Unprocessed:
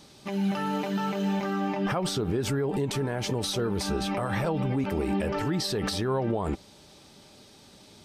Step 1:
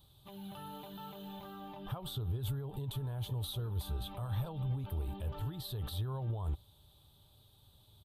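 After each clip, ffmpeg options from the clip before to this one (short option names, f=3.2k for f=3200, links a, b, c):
-af "firequalizer=gain_entry='entry(110,0);entry(200,-22);entry(990,-14);entry(2100,-28);entry(3500,-6);entry(5300,-29);entry(12000,0)':delay=0.05:min_phase=1"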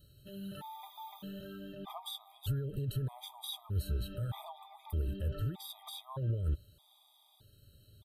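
-af "afftfilt=real='re*gt(sin(2*PI*0.81*pts/sr)*(1-2*mod(floor(b*sr/1024/640),2)),0)':imag='im*gt(sin(2*PI*0.81*pts/sr)*(1-2*mod(floor(b*sr/1024/640),2)),0)':win_size=1024:overlap=0.75,volume=3.5dB"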